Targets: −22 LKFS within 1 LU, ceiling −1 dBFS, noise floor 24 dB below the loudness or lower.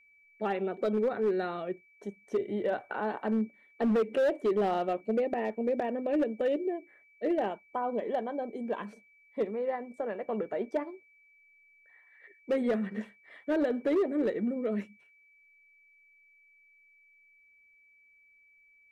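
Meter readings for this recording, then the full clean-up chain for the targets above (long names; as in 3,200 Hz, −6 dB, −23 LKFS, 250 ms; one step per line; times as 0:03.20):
share of clipped samples 1.3%; peaks flattened at −22.5 dBFS; interfering tone 2,300 Hz; level of the tone −60 dBFS; integrated loudness −31.5 LKFS; sample peak −22.5 dBFS; target loudness −22.0 LKFS
→ clipped peaks rebuilt −22.5 dBFS
notch filter 2,300 Hz, Q 30
level +9.5 dB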